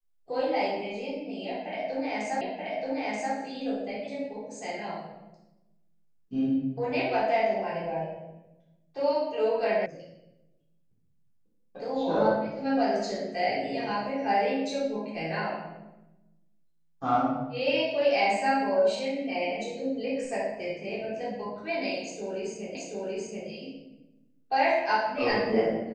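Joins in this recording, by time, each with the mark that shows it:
0:02.41: the same again, the last 0.93 s
0:09.86: cut off before it has died away
0:22.75: the same again, the last 0.73 s

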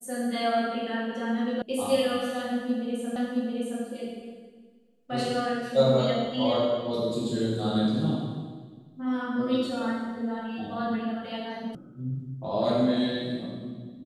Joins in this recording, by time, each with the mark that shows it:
0:01.62: cut off before it has died away
0:03.16: the same again, the last 0.67 s
0:11.75: cut off before it has died away

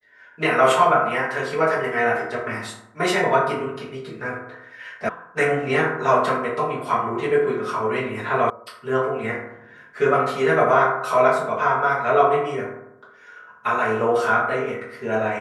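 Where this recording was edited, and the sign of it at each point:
0:05.09: cut off before it has died away
0:08.50: cut off before it has died away

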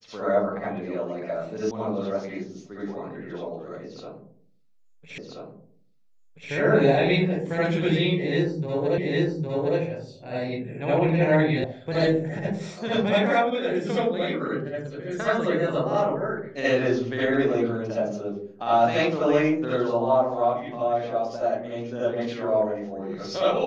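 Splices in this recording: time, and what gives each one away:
0:01.71: cut off before it has died away
0:05.18: the same again, the last 1.33 s
0:08.98: the same again, the last 0.81 s
0:11.64: cut off before it has died away

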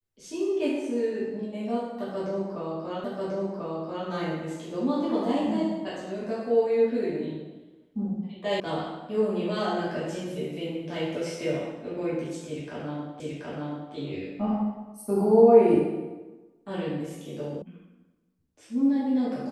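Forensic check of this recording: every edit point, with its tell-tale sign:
0:03.04: the same again, the last 1.04 s
0:08.60: cut off before it has died away
0:13.20: the same again, the last 0.73 s
0:17.62: cut off before it has died away

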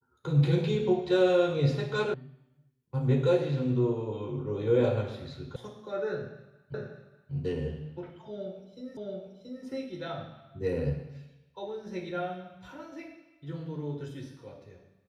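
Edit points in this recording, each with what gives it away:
0:02.14: cut off before it has died away
0:05.56: cut off before it has died away
0:06.74: the same again, the last 0.59 s
0:08.97: the same again, the last 0.68 s

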